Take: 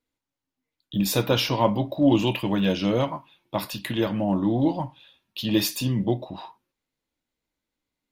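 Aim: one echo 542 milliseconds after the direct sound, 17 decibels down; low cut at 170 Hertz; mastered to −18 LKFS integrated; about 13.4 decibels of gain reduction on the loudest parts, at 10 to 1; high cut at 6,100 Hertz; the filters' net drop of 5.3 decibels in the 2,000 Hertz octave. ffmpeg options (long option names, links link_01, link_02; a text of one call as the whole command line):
ffmpeg -i in.wav -af "highpass=170,lowpass=6100,equalizer=frequency=2000:width_type=o:gain=-7.5,acompressor=threshold=-29dB:ratio=10,aecho=1:1:542:0.141,volume=16.5dB" out.wav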